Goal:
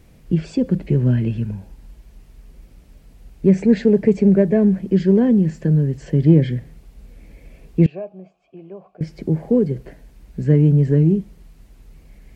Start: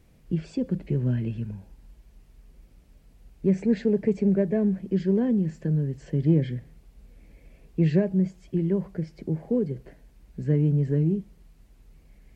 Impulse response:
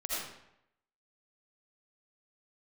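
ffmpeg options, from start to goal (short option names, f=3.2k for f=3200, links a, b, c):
-filter_complex "[0:a]asettb=1/sr,asplit=3[a][b][c];[a]atrim=end=7.864[d];[b]atrim=start=7.86:end=9.01,asetpts=PTS-STARTPTS,afade=t=in:d=0.004:c=qsin,afade=t=out:st=1.146:d=0.004:c=qsin,asplit=3[e][f][g];[e]bandpass=f=730:t=q:w=8,volume=0dB[h];[f]bandpass=f=1.09k:t=q:w=8,volume=-6dB[i];[g]bandpass=f=2.44k:t=q:w=8,volume=-9dB[j];[h][i][j]amix=inputs=3:normalize=0[k];[c]atrim=start=9.006[l];[d][k]acrossfade=d=0.004:c1=hsin:c2=qsin[m];[m][l]acrossfade=d=0.004:c1=qsin:c2=hsin,volume=8.5dB"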